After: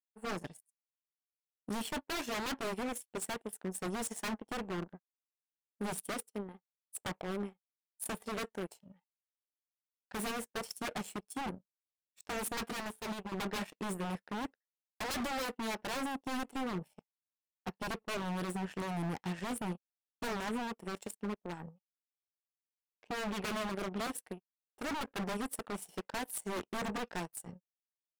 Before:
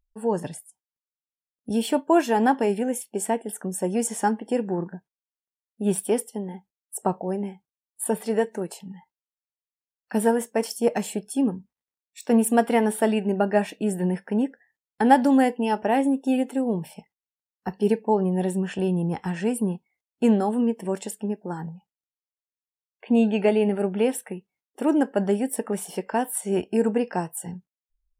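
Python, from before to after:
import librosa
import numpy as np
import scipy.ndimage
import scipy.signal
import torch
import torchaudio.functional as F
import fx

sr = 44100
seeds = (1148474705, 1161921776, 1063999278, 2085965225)

y = 10.0 ** (-23.0 / 20.0) * (np.abs((x / 10.0 ** (-23.0 / 20.0) + 3.0) % 4.0 - 2.0) - 1.0)
y = fx.power_curve(y, sr, exponent=2.0)
y = fx.upward_expand(y, sr, threshold_db=-41.0, expansion=2.5, at=(12.72, 13.32))
y = y * librosa.db_to_amplitude(-6.5)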